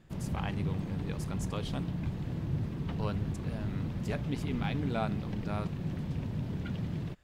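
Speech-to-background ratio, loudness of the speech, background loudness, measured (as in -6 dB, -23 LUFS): -3.0 dB, -39.5 LUFS, -36.5 LUFS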